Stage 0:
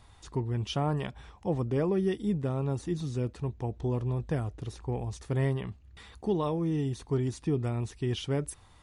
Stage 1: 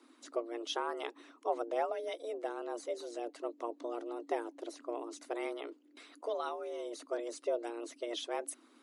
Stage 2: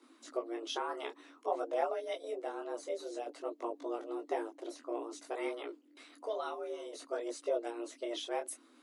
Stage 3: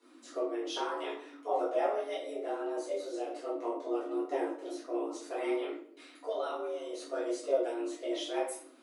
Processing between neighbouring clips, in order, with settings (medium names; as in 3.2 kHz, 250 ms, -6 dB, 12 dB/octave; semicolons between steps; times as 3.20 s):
harmonic-percussive split harmonic -11 dB; frequency shift +230 Hz; trim -1.5 dB
detune thickener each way 19 cents; trim +3.5 dB
simulated room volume 71 m³, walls mixed, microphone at 1.8 m; trim -5.5 dB